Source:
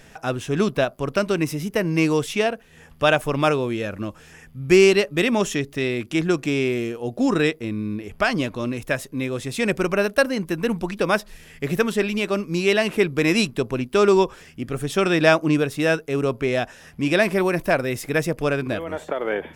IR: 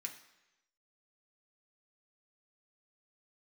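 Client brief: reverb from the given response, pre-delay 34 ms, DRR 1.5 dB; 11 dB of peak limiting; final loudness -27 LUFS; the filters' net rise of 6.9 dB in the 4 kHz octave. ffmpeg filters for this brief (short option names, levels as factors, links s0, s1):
-filter_complex "[0:a]equalizer=f=4000:t=o:g=9,alimiter=limit=0.266:level=0:latency=1,asplit=2[s0][s1];[1:a]atrim=start_sample=2205,adelay=34[s2];[s1][s2]afir=irnorm=-1:irlink=0,volume=1.12[s3];[s0][s3]amix=inputs=2:normalize=0,volume=0.562"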